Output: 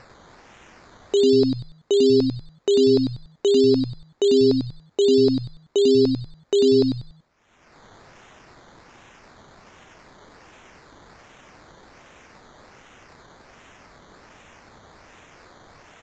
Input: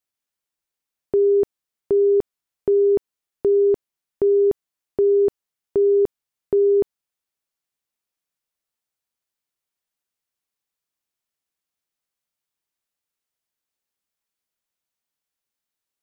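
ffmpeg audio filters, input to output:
-filter_complex "[0:a]highpass=370,acompressor=mode=upward:threshold=-50dB:ratio=2.5,crystalizer=i=3.5:c=0,acrusher=samples=13:mix=1:aa=0.000001:lfo=1:lforange=7.8:lforate=1.3,asplit=2[a][b];[b]asplit=4[c][d][e][f];[c]adelay=95,afreqshift=-140,volume=-4.5dB[g];[d]adelay=190,afreqshift=-280,volume=-14.7dB[h];[e]adelay=285,afreqshift=-420,volume=-24.8dB[i];[f]adelay=380,afreqshift=-560,volume=-35dB[j];[g][h][i][j]amix=inputs=4:normalize=0[k];[a][k]amix=inputs=2:normalize=0,aresample=16000,aresample=44100,volume=1.5dB"

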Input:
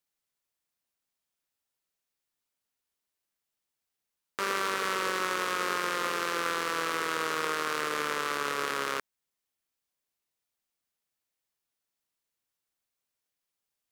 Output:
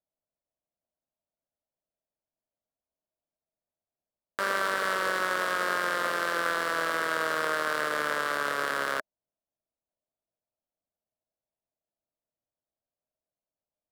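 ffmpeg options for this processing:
-filter_complex "[0:a]acrossover=split=930[a][b];[b]aeval=exprs='val(0)*gte(abs(val(0)),0.00251)':c=same[c];[a][c]amix=inputs=2:normalize=0,equalizer=f=400:t=o:w=0.33:g=-4,equalizer=f=630:t=o:w=0.33:g=11,equalizer=f=1.6k:t=o:w=0.33:g=7,equalizer=f=2.5k:t=o:w=0.33:g=-6,equalizer=f=6.3k:t=o:w=0.33:g=-5"

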